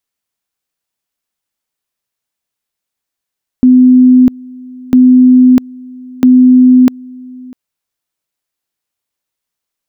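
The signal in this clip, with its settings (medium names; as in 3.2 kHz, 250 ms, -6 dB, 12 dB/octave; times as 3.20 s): two-level tone 253 Hz -1.5 dBFS, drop 25 dB, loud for 0.65 s, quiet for 0.65 s, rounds 3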